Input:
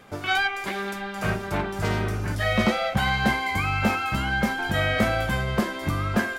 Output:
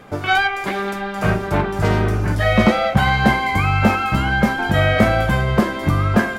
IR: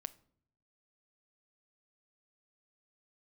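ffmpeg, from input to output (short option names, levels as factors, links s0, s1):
-filter_complex "[0:a]asplit=2[s0][s1];[s1]highshelf=f=2400:g=-11.5[s2];[1:a]atrim=start_sample=2205[s3];[s2][s3]afir=irnorm=-1:irlink=0,volume=4.73[s4];[s0][s4]amix=inputs=2:normalize=0,volume=0.668"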